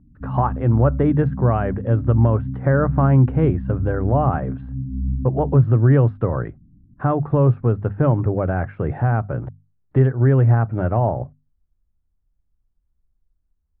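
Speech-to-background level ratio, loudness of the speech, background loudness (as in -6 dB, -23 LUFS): 8.5 dB, -19.5 LUFS, -28.0 LUFS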